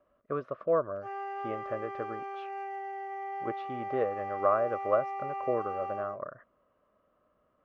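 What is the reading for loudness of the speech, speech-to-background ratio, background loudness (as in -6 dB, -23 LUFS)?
-33.5 LUFS, 4.5 dB, -38.0 LUFS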